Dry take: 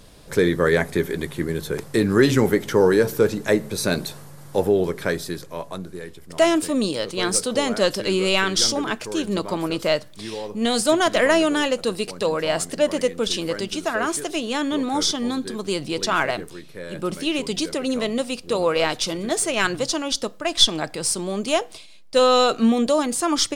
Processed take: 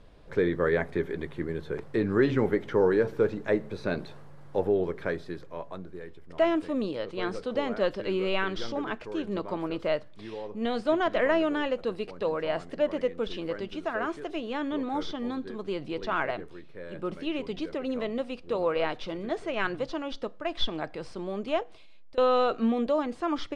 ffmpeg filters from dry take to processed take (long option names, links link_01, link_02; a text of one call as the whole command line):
ffmpeg -i in.wav -filter_complex "[0:a]asettb=1/sr,asplit=3[link_01][link_02][link_03];[link_01]atrim=end=21.634[link_04];[link_02]atrim=start=21.63:end=22.18,asetpts=PTS-STARTPTS,afade=type=in:duration=0.004:curve=qsin,afade=type=out:start_time=0.546:duration=0.004:curve=qsin,acompressor=threshold=-37dB:ratio=12:attack=3.2:release=140:knee=1:detection=peak[link_05];[link_03]atrim=start=22.176[link_06];[link_04][link_05]acrossfade=duration=0.004:curve1=hsin:curve2=qsin[link_07];[link_07][link_06]acrossfade=duration=0.004:curve1=qsin:curve2=hsin,aemphasis=mode=reproduction:type=bsi,acrossover=split=4800[link_08][link_09];[link_09]acompressor=threshold=-48dB:ratio=4:attack=1:release=60[link_10];[link_08][link_10]amix=inputs=2:normalize=0,bass=frequency=250:gain=-11,treble=frequency=4000:gain=-9,volume=-7dB" out.wav